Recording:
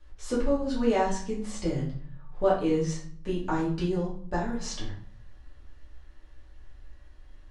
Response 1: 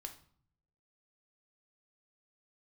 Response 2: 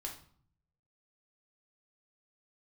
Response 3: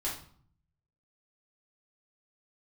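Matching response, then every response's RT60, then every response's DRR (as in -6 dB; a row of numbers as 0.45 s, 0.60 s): 3; 0.55 s, 0.55 s, 0.55 s; 5.0 dB, -0.5 dB, -6.5 dB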